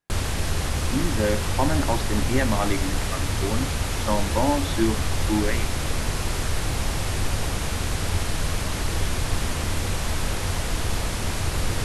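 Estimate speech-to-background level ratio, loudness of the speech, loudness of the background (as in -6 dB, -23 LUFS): -0.5 dB, -27.5 LUFS, -27.0 LUFS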